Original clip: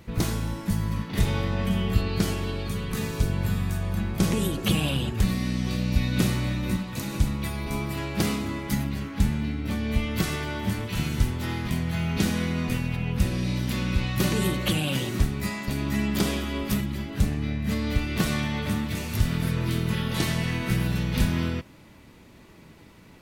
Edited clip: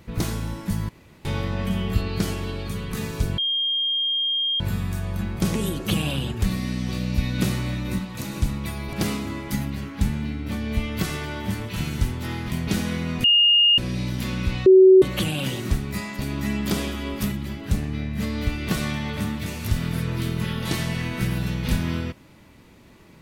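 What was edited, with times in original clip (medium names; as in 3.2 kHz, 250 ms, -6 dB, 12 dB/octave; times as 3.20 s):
0.89–1.25 s: room tone
3.38 s: add tone 3.22 kHz -20.5 dBFS 1.22 s
7.71–8.12 s: delete
11.86–12.16 s: delete
12.73–13.27 s: bleep 2.84 kHz -13 dBFS
14.15–14.51 s: bleep 377 Hz -7.5 dBFS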